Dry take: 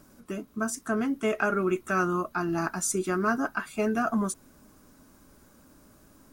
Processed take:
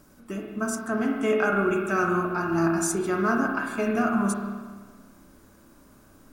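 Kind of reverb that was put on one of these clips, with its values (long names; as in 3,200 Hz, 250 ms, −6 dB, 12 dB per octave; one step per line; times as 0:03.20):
spring reverb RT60 1.5 s, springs 30/51 ms, chirp 20 ms, DRR 0.5 dB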